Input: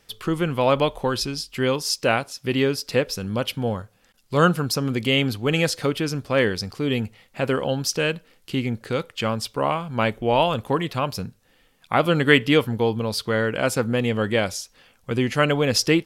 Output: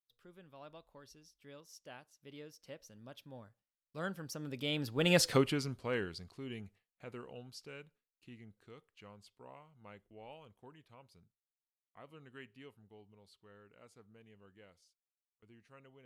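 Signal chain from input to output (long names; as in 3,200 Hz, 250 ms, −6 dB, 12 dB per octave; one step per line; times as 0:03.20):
source passing by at 0:05.27, 30 m/s, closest 4.4 metres
noise gate with hold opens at −55 dBFS
level −3.5 dB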